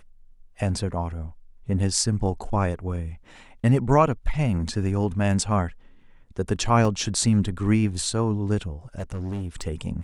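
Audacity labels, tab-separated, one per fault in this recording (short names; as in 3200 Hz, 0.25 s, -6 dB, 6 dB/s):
6.850000	6.850000	gap 2.1 ms
8.980000	9.680000	clipped -26.5 dBFS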